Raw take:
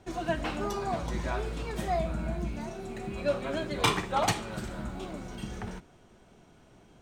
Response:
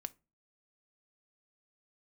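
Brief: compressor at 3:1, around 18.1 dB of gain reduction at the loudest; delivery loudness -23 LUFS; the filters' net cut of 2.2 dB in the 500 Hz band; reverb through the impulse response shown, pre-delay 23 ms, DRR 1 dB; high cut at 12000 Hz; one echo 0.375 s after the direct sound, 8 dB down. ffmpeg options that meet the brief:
-filter_complex "[0:a]lowpass=12k,equalizer=f=500:t=o:g=-3,acompressor=threshold=-47dB:ratio=3,aecho=1:1:375:0.398,asplit=2[a][b];[1:a]atrim=start_sample=2205,adelay=23[c];[b][c]afir=irnorm=-1:irlink=0,volume=2dB[d];[a][d]amix=inputs=2:normalize=0,volume=20.5dB"

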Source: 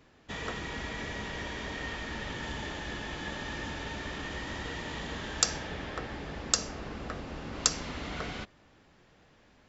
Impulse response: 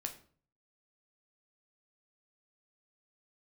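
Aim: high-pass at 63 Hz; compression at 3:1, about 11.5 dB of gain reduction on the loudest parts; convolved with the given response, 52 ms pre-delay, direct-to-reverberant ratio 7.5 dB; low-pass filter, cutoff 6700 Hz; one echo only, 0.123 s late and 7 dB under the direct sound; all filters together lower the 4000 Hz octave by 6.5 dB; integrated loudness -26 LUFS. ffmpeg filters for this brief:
-filter_complex "[0:a]highpass=63,lowpass=6.7k,equalizer=f=4k:t=o:g=-8,acompressor=threshold=-43dB:ratio=3,aecho=1:1:123:0.447,asplit=2[a][b];[1:a]atrim=start_sample=2205,adelay=52[c];[b][c]afir=irnorm=-1:irlink=0,volume=-6.5dB[d];[a][d]amix=inputs=2:normalize=0,volume=17.5dB"

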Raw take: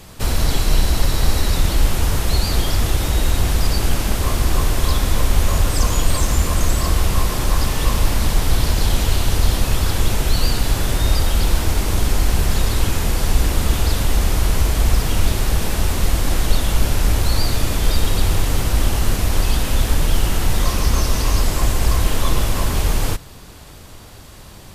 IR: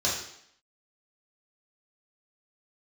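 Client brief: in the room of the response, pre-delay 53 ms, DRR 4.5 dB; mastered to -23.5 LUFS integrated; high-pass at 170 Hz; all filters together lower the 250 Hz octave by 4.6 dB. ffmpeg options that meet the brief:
-filter_complex "[0:a]highpass=170,equalizer=f=250:t=o:g=-4.5,asplit=2[a][b];[1:a]atrim=start_sample=2205,adelay=53[c];[b][c]afir=irnorm=-1:irlink=0,volume=-15dB[d];[a][d]amix=inputs=2:normalize=0,volume=-0.5dB"

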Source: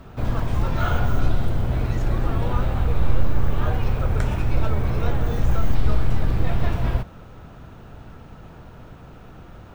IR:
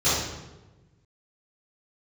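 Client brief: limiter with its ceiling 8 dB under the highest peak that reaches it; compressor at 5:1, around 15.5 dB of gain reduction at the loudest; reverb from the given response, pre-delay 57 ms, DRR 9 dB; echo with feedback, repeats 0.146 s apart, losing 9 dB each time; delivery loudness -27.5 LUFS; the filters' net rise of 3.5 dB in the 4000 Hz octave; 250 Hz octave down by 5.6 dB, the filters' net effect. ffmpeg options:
-filter_complex "[0:a]equalizer=f=250:t=o:g=-9,equalizer=f=4k:t=o:g=4.5,acompressor=threshold=-29dB:ratio=5,alimiter=level_in=4dB:limit=-24dB:level=0:latency=1,volume=-4dB,aecho=1:1:146|292|438|584:0.355|0.124|0.0435|0.0152,asplit=2[a][b];[1:a]atrim=start_sample=2205,adelay=57[c];[b][c]afir=irnorm=-1:irlink=0,volume=-25.5dB[d];[a][d]amix=inputs=2:normalize=0,volume=11.5dB"

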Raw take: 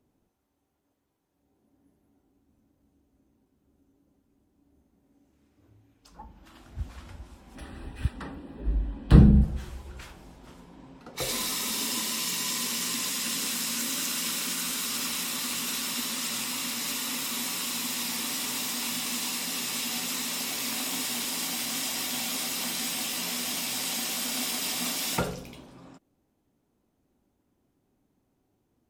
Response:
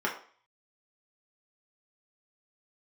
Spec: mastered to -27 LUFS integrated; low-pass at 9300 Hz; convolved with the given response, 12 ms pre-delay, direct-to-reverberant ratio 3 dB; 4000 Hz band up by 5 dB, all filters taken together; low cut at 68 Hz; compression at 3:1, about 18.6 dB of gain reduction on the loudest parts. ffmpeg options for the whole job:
-filter_complex "[0:a]highpass=68,lowpass=9.3k,equalizer=f=4k:t=o:g=6.5,acompressor=threshold=-37dB:ratio=3,asplit=2[a][b];[1:a]atrim=start_sample=2205,adelay=12[c];[b][c]afir=irnorm=-1:irlink=0,volume=-12.5dB[d];[a][d]amix=inputs=2:normalize=0,volume=8dB"

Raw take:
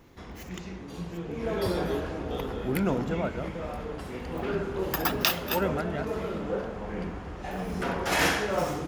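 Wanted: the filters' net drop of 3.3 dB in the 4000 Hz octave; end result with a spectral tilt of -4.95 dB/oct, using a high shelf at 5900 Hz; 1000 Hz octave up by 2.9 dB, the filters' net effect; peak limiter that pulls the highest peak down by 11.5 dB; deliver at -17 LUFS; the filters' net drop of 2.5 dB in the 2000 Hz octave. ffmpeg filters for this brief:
-af "equalizer=f=1k:t=o:g=5,equalizer=f=2k:t=o:g=-4.5,equalizer=f=4k:t=o:g=-6,highshelf=f=5.9k:g=7,volume=14.5dB,alimiter=limit=-5dB:level=0:latency=1"

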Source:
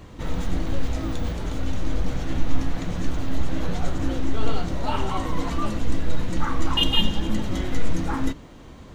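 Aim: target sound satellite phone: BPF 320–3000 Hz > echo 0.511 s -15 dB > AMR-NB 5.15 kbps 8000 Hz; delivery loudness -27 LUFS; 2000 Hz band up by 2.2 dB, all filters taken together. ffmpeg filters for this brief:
-af "highpass=320,lowpass=3k,equalizer=f=2k:t=o:g=4.5,aecho=1:1:511:0.178,volume=8dB" -ar 8000 -c:a libopencore_amrnb -b:a 5150

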